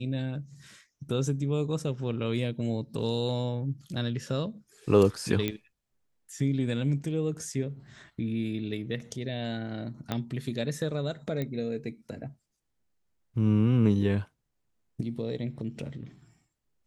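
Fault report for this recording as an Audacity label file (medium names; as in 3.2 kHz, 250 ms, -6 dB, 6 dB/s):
5.480000	5.480000	pop -15 dBFS
10.120000	10.120000	pop -15 dBFS
11.420000	11.420000	pop -20 dBFS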